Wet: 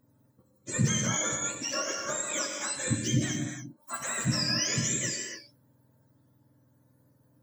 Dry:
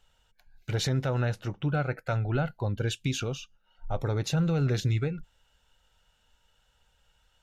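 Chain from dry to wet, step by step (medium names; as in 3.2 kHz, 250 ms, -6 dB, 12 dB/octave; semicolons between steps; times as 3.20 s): spectrum inverted on a logarithmic axis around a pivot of 910 Hz; gated-style reverb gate 320 ms flat, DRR 1 dB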